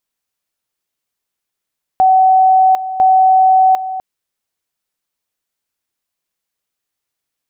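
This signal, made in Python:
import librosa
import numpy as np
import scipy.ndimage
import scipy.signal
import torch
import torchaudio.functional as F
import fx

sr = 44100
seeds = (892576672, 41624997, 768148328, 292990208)

y = fx.two_level_tone(sr, hz=755.0, level_db=-6.0, drop_db=13.0, high_s=0.75, low_s=0.25, rounds=2)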